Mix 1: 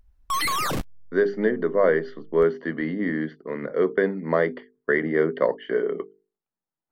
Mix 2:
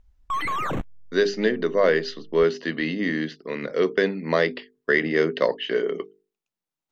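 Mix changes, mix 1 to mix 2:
speech: remove Savitzky-Golay filter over 41 samples; background: add boxcar filter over 9 samples

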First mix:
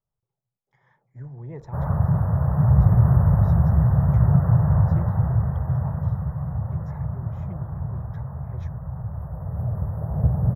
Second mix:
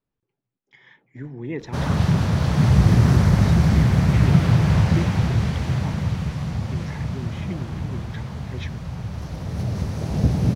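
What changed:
background: remove brick-wall FIR band-stop 2–11 kHz; master: remove FFT filter 140 Hz 0 dB, 280 Hz -18 dB, 610 Hz -1 dB, 1.2 kHz -4 dB, 2.8 kHz -26 dB, 9 kHz -7 dB

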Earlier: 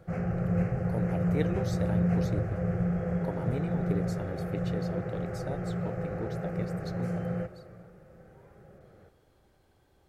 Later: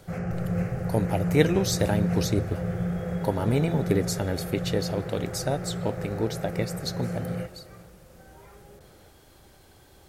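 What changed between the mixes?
speech +10.5 dB; master: add treble shelf 3.2 kHz +10 dB

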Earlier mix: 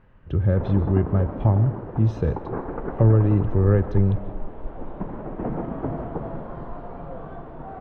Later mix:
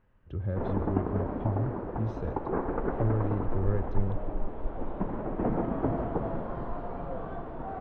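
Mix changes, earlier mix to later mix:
speech -11.5 dB; master: add peaking EQ 150 Hz -5 dB 0.29 oct

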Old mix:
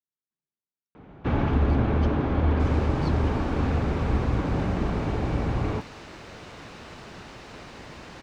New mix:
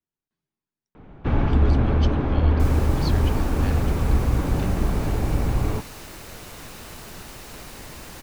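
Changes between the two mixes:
speech +11.5 dB; second sound: remove distance through air 140 m; master: remove high-pass 96 Hz 6 dB/octave

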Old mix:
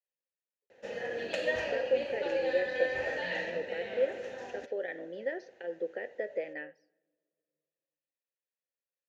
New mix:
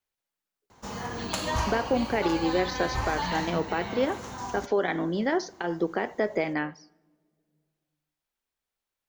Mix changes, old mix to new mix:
background -10.5 dB; master: remove vowel filter e

